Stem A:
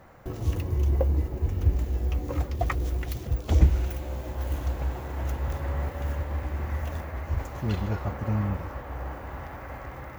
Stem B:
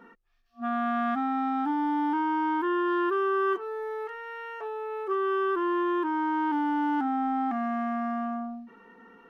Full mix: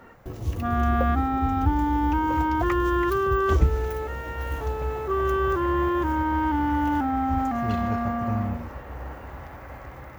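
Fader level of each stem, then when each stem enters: -1.5, +2.5 dB; 0.00, 0.00 s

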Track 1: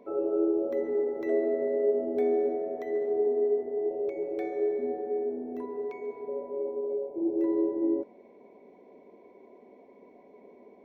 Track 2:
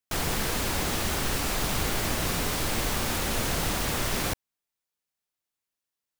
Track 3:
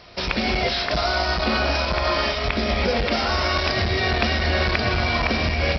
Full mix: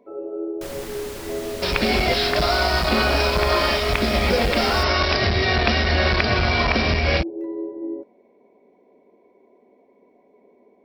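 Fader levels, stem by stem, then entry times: -2.5, -8.0, +2.0 dB; 0.00, 0.50, 1.45 s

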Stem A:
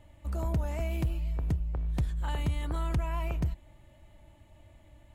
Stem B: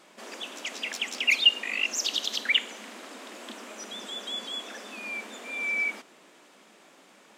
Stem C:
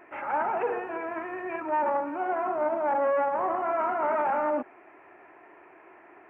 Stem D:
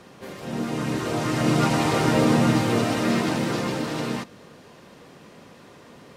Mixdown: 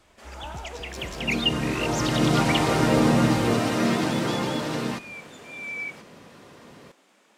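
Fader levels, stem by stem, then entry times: -10.5, -5.0, -12.5, -0.5 dB; 0.00, 0.00, 0.10, 0.75 s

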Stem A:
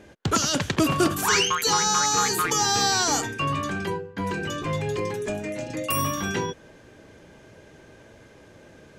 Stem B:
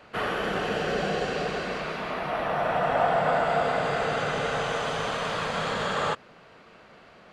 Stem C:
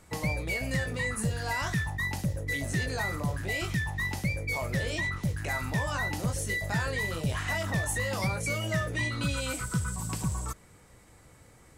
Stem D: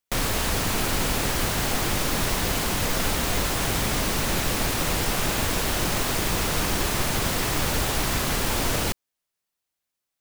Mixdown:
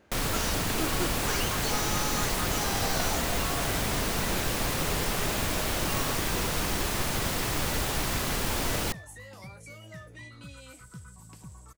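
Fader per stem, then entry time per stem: -13.0, -15.5, -15.5, -4.5 dB; 0.00, 0.00, 1.20, 0.00 s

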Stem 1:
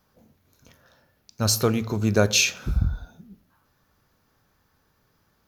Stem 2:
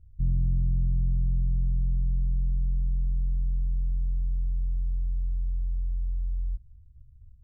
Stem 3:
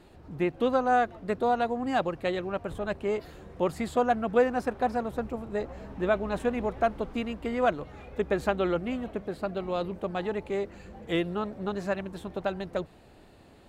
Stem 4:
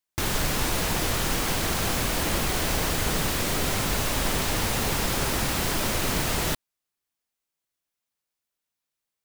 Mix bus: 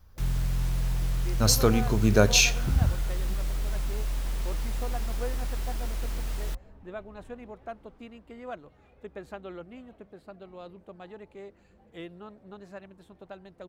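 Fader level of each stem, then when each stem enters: -0.5, -3.0, -14.0, -16.5 dB; 0.00, 0.00, 0.85, 0.00 s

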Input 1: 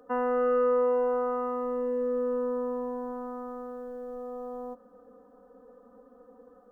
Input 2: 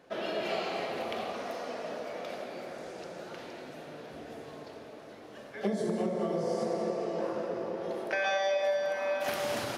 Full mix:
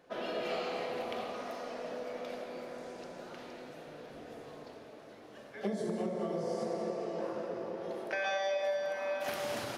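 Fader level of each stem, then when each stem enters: -17.5, -4.0 dB; 0.00, 0.00 s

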